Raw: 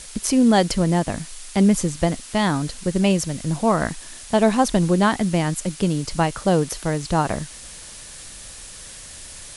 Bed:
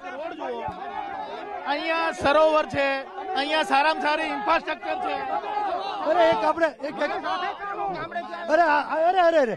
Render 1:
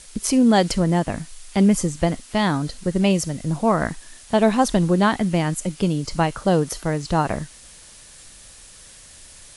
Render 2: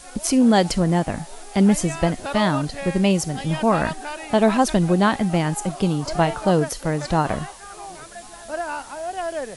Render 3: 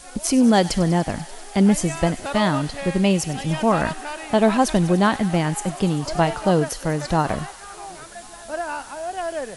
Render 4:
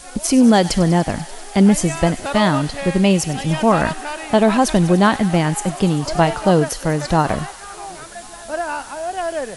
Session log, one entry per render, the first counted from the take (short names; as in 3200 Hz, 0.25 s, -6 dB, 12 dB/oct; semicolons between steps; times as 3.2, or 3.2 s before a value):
noise print and reduce 6 dB
add bed -9 dB
thin delay 97 ms, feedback 83%, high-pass 1700 Hz, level -15 dB
gain +4 dB; limiter -3 dBFS, peak gain reduction 3 dB